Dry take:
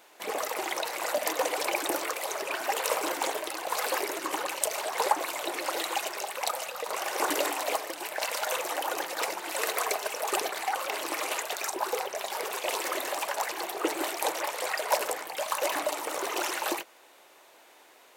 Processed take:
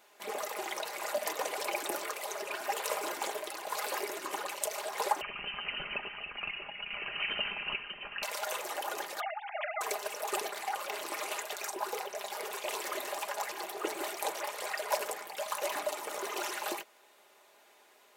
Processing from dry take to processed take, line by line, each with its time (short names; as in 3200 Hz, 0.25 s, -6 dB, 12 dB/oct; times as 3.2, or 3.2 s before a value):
5.21–8.23 inverted band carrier 3400 Hz
9.2–9.81 sine-wave speech
whole clip: comb 4.9 ms, depth 46%; gain -6.5 dB